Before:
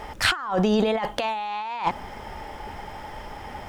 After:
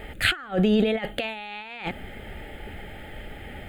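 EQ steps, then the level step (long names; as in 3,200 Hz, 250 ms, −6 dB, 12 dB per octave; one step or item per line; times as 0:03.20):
phaser with its sweep stopped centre 2,400 Hz, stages 4
+2.0 dB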